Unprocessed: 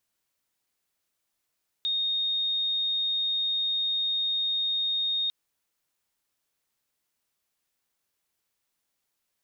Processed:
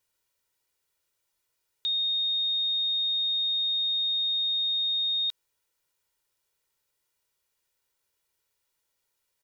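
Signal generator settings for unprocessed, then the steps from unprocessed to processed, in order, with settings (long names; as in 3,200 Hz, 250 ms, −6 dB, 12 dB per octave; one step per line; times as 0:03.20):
tone sine 3,700 Hz −24.5 dBFS 3.45 s
comb filter 2.1 ms, depth 55%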